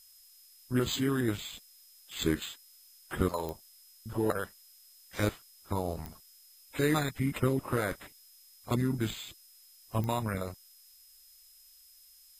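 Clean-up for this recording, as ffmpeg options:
-af "adeclick=t=4,bandreject=f=5.1k:w=30,afftdn=nr=19:nf=-58"

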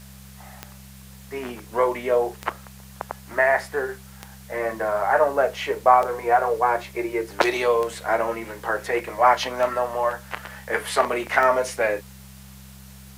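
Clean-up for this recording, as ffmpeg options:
-af "adeclick=t=4,bandreject=f=65.9:t=h:w=4,bandreject=f=131.8:t=h:w=4,bandreject=f=197.7:t=h:w=4,afwtdn=0.0035"

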